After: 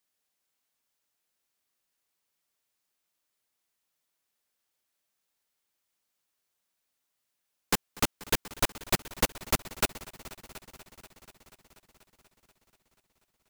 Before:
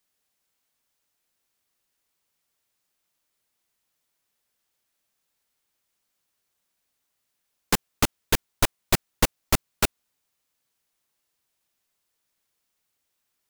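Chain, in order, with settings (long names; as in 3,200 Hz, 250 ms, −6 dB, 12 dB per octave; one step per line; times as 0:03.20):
low-shelf EQ 150 Hz −5 dB
echo machine with several playback heads 242 ms, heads all three, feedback 57%, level −22 dB
level −4 dB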